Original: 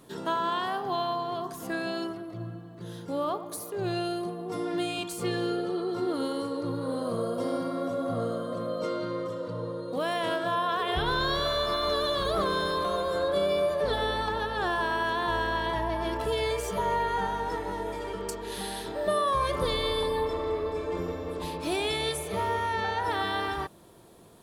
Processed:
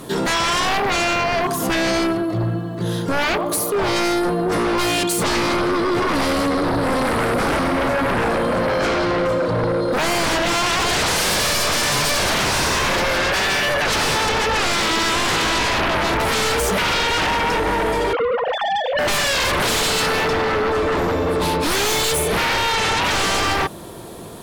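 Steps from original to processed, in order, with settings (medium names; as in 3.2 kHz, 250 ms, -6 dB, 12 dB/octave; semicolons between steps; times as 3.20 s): 18.13–18.99 s: formants replaced by sine waves; sine folder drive 15 dB, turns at -16 dBFS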